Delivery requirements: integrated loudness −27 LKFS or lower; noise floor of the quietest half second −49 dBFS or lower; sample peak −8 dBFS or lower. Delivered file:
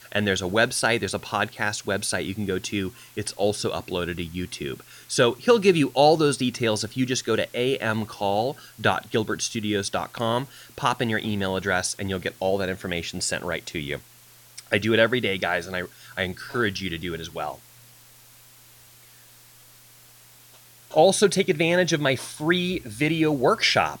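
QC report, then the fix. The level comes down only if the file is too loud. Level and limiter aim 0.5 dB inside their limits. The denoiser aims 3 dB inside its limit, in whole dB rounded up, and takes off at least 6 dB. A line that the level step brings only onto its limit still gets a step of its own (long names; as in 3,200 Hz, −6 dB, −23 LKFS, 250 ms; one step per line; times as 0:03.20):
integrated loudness −24.0 LKFS: out of spec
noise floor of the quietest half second −51 dBFS: in spec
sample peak −6.0 dBFS: out of spec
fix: level −3.5 dB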